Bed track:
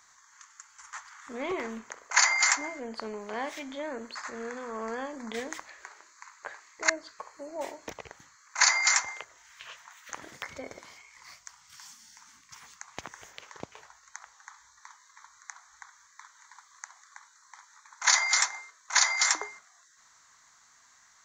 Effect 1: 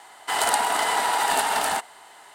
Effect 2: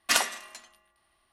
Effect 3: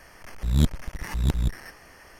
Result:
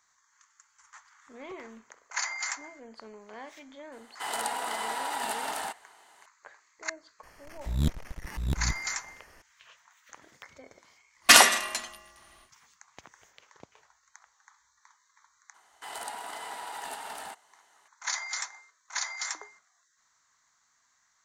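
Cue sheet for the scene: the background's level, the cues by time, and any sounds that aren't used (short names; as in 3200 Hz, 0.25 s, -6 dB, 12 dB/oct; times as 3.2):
bed track -10 dB
3.92 add 1 -10.5 dB + HPF 70 Hz
7.23 add 3 -6.5 dB
11.2 add 2 -2 dB, fades 0.10 s + maximiser +15 dB
15.54 add 1 -17 dB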